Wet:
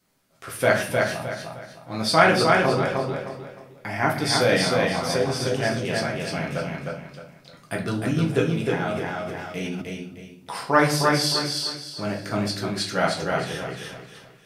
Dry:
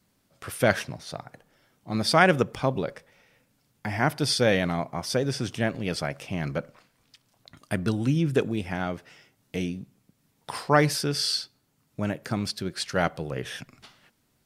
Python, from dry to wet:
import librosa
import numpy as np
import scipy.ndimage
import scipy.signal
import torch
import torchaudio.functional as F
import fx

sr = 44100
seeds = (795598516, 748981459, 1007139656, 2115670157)

y = fx.low_shelf(x, sr, hz=170.0, db=-8.5)
y = fx.echo_feedback(y, sr, ms=308, feedback_pct=32, wet_db=-3)
y = fx.room_shoebox(y, sr, seeds[0], volume_m3=51.0, walls='mixed', distance_m=0.72)
y = fx.sustainer(y, sr, db_per_s=21.0, at=(8.91, 9.82))
y = F.gain(torch.from_numpy(y), -1.0).numpy()